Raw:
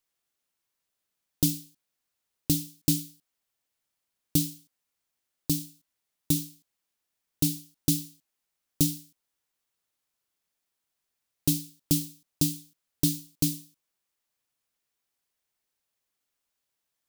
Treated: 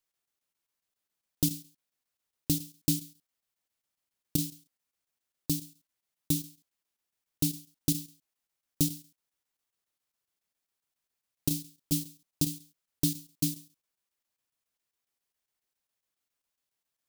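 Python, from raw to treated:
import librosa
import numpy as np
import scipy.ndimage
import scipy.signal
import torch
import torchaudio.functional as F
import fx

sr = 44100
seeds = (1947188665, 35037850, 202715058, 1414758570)

y = fx.chopper(x, sr, hz=7.3, depth_pct=60, duty_pct=85)
y = F.gain(torch.from_numpy(y), -3.0).numpy()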